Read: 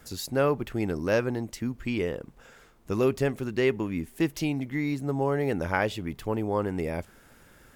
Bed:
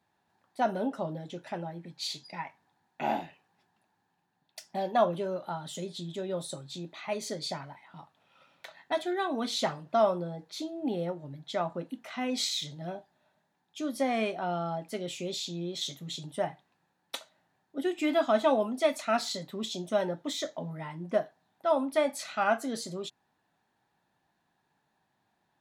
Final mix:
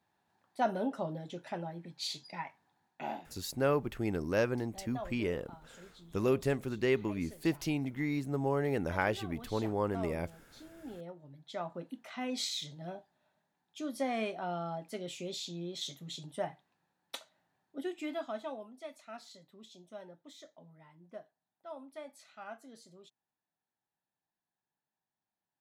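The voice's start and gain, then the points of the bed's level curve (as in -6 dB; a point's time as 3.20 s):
3.25 s, -5.0 dB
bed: 2.84 s -2.5 dB
3.41 s -17.5 dB
10.54 s -17.5 dB
11.92 s -5 dB
17.68 s -5 dB
18.71 s -19.5 dB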